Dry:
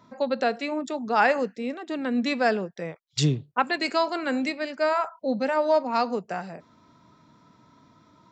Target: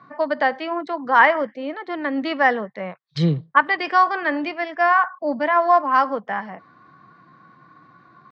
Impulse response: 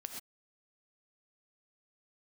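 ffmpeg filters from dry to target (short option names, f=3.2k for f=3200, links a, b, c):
-af "asetrate=49501,aresample=44100,atempo=0.890899,highpass=110,equalizer=f=140:t=q:w=4:g=5,equalizer=f=250:t=q:w=4:g=-4,equalizer=f=380:t=q:w=4:g=-4,equalizer=f=1.1k:t=q:w=4:g=8,equalizer=f=1.8k:t=q:w=4:g=7,equalizer=f=2.7k:t=q:w=4:g=-7,lowpass=f=3.7k:w=0.5412,lowpass=f=3.7k:w=1.3066,volume=3.5dB"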